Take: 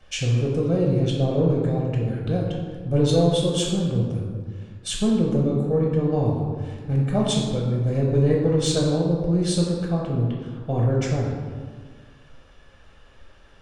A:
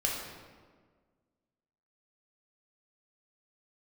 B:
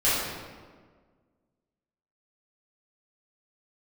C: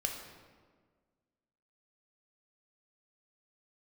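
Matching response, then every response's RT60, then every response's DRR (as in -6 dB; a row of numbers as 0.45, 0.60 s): A; 1.6, 1.6, 1.6 s; -2.5, -12.0, 2.0 dB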